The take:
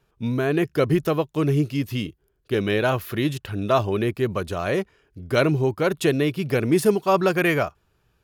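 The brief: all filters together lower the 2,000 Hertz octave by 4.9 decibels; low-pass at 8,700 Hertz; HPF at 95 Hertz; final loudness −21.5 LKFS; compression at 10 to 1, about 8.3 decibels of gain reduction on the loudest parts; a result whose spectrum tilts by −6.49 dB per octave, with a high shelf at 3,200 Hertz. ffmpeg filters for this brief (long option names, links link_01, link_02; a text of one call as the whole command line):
ffmpeg -i in.wav -af "highpass=95,lowpass=8700,equalizer=frequency=2000:width_type=o:gain=-5,highshelf=frequency=3200:gain=-4.5,acompressor=threshold=-22dB:ratio=10,volume=7dB" out.wav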